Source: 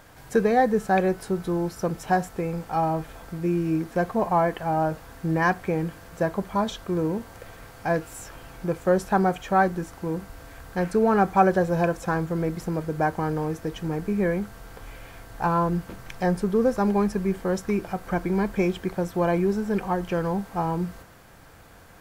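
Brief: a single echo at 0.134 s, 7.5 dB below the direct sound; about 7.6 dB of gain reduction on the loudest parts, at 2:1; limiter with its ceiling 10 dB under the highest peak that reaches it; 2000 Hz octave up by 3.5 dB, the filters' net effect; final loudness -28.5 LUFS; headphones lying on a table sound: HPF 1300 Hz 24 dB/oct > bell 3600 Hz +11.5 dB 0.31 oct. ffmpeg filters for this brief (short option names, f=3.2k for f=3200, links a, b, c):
-af "equalizer=f=2k:t=o:g=5,acompressor=threshold=-27dB:ratio=2,alimiter=limit=-24dB:level=0:latency=1,highpass=f=1.3k:w=0.5412,highpass=f=1.3k:w=1.3066,equalizer=f=3.6k:t=o:w=0.31:g=11.5,aecho=1:1:134:0.422,volume=13dB"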